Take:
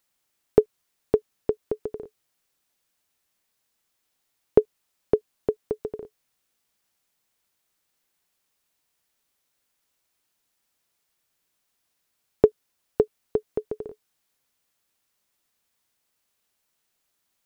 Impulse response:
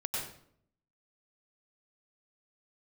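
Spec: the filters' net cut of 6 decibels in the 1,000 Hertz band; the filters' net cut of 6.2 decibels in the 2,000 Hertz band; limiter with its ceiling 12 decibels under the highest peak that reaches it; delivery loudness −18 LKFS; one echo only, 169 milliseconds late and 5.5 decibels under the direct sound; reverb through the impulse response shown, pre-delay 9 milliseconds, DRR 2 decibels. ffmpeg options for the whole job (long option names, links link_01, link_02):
-filter_complex "[0:a]equalizer=frequency=1000:width_type=o:gain=-8,equalizer=frequency=2000:width_type=o:gain=-5,alimiter=limit=-15.5dB:level=0:latency=1,aecho=1:1:169:0.531,asplit=2[link_01][link_02];[1:a]atrim=start_sample=2205,adelay=9[link_03];[link_02][link_03]afir=irnorm=-1:irlink=0,volume=-6dB[link_04];[link_01][link_04]amix=inputs=2:normalize=0,volume=15dB"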